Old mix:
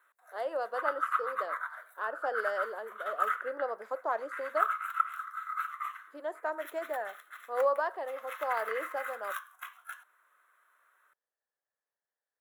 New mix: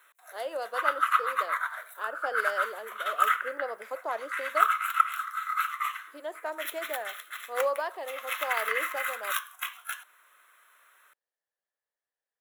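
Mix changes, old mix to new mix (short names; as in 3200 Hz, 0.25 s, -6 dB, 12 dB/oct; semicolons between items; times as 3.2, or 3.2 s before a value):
background +7.5 dB; master: add resonant high shelf 2000 Hz +6.5 dB, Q 1.5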